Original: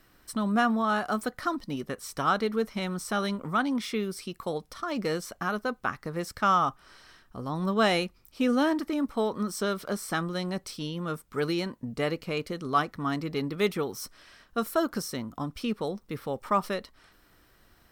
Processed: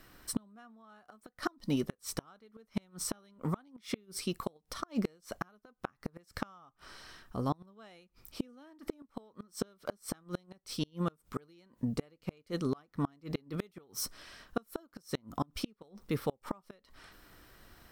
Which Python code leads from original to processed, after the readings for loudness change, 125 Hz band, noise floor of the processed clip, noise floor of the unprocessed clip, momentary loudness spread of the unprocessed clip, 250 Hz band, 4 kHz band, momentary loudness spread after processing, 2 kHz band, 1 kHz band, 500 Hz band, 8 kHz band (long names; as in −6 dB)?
−9.5 dB, −4.5 dB, −77 dBFS, −62 dBFS, 10 LU, −8.5 dB, −9.0 dB, 20 LU, −15.5 dB, −15.5 dB, −11.5 dB, −2.5 dB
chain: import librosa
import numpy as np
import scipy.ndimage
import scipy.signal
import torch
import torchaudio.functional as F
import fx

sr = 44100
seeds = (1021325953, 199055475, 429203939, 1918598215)

y = fx.gate_flip(x, sr, shuts_db=-22.0, range_db=-34)
y = fx.dynamic_eq(y, sr, hz=1800.0, q=0.73, threshold_db=-55.0, ratio=4.0, max_db=-3)
y = y * librosa.db_to_amplitude(3.0)